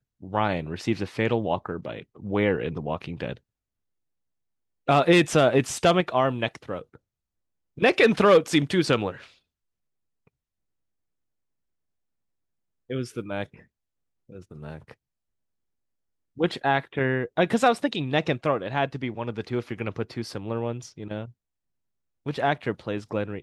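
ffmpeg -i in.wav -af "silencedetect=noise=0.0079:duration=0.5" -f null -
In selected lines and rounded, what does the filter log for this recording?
silence_start: 3.37
silence_end: 4.88 | silence_duration: 1.50
silence_start: 6.96
silence_end: 7.77 | silence_duration: 0.81
silence_start: 9.26
silence_end: 12.90 | silence_duration: 3.63
silence_start: 13.60
silence_end: 14.29 | silence_duration: 0.70
silence_start: 14.92
silence_end: 16.37 | silence_duration: 1.45
silence_start: 21.30
silence_end: 22.26 | silence_duration: 0.96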